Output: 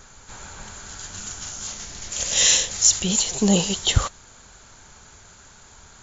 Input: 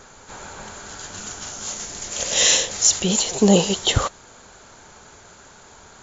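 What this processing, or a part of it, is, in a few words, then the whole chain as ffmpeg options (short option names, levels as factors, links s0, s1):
smiley-face EQ: -filter_complex "[0:a]asettb=1/sr,asplit=3[s0][s1][s2];[s0]atrim=end=1.674[s3];[s1]atrim=start=1.67:end=2.12,asetpts=PTS-STARTPTS,afade=t=in:d=0.004:c=qsin,afade=t=out:st=0.446:d=0.004:c=qsin,lowpass=5700[s4];[s2]atrim=start=2.116[s5];[s3][s4]acrossfade=d=0.004:c1=hsin:c2=qsin[s6];[s6][s5]acrossfade=d=0.004:c1=qsin:c2=hsin,lowshelf=f=92:g=8.5,equalizer=f=480:t=o:w=2.1:g=-6,highshelf=f=6500:g=4.5,volume=0.794"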